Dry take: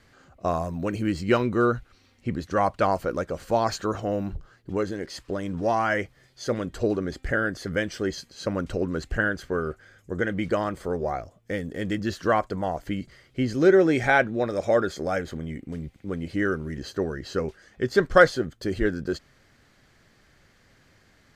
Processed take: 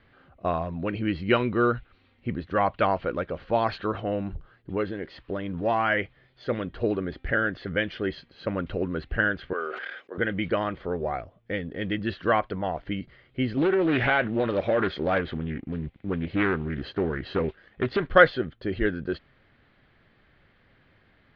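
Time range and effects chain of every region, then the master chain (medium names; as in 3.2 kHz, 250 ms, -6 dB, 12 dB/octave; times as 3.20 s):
9.53–10.18 s: gate -50 dBFS, range -24 dB + Bessel high-pass 520 Hz, order 4 + decay stretcher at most 31 dB/s
13.57–18.04 s: compression 12:1, threshold -20 dBFS + waveshaping leveller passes 1 + loudspeaker Doppler distortion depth 0.35 ms
whole clip: steep low-pass 3.7 kHz 36 dB/octave; dynamic bell 2.9 kHz, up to +6 dB, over -43 dBFS, Q 0.9; trim -1.5 dB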